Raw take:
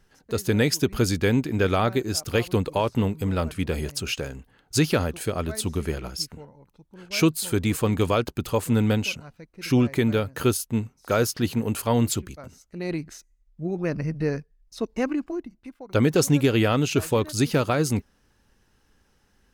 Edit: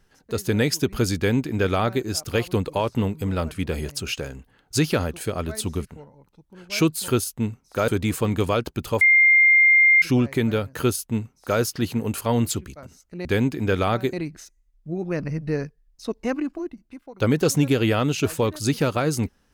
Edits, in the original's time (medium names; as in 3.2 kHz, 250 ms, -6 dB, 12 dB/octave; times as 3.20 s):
1.17–2.05 s: copy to 12.86 s
5.85–6.26 s: delete
8.62–9.63 s: bleep 2.11 kHz -11.5 dBFS
10.41–11.21 s: copy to 7.49 s